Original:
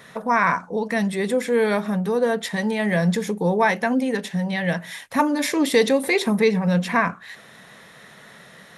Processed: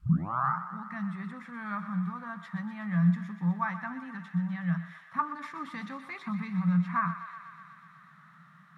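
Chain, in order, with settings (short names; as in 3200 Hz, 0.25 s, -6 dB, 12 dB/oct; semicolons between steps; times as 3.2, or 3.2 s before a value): tape start at the beginning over 0.60 s; added noise blue -49 dBFS; double band-pass 450 Hz, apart 2.9 oct; on a send: thinning echo 0.123 s, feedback 84%, high-pass 700 Hz, level -11 dB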